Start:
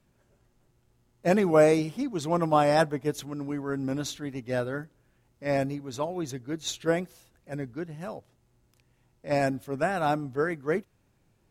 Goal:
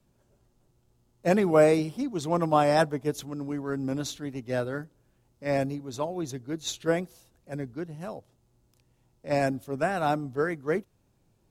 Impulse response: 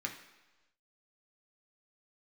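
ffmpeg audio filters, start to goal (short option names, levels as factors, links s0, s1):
-filter_complex "[0:a]asettb=1/sr,asplit=3[s0][s1][s2];[s0]atrim=end=1.354[s3];[s1]atrim=start=1.35:end=1.98,asetpts=PTS-STARTPTS,afade=t=in:d=0.004:c=qsin,afade=t=out:st=0.626:d=0.004:c=qsin,bandreject=f=6300:w=7.3[s4];[s2]atrim=start=1.976[s5];[s3][s4]acrossfade=d=0.004:c1=hsin:c2=qsin[s6];[s6][s5]acrossfade=d=0.004:c1=qsin:c2=hsin,acrossover=split=400|1500|2400[s7][s8][s9][s10];[s9]aeval=exprs='sgn(val(0))*max(abs(val(0))-0.00133,0)':c=same[s11];[s7][s8][s11][s10]amix=inputs=4:normalize=0"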